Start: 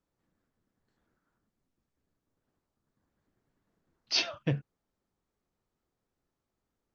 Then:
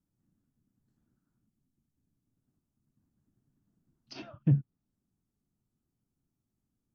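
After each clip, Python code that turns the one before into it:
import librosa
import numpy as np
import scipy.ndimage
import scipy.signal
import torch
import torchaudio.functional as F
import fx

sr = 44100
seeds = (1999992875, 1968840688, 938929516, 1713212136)

y = fx.env_lowpass_down(x, sr, base_hz=1800.0, full_db=-32.5)
y = fx.graphic_eq(y, sr, hz=(125, 250, 500, 1000, 2000, 4000), db=(7, 6, -11, -6, -11, -9))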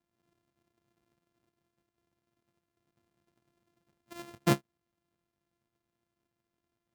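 y = np.r_[np.sort(x[:len(x) // 128 * 128].reshape(-1, 128), axis=1).ravel(), x[len(x) // 128 * 128:]]
y = fx.highpass(y, sr, hz=120.0, slope=6)
y = fx.end_taper(y, sr, db_per_s=490.0)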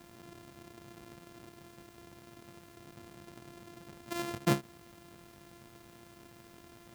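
y = fx.env_flatten(x, sr, amount_pct=50)
y = F.gain(torch.from_numpy(y), -2.5).numpy()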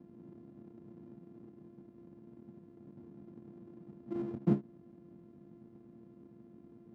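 y = fx.halfwave_hold(x, sr)
y = fx.bandpass_q(y, sr, hz=230.0, q=2.0)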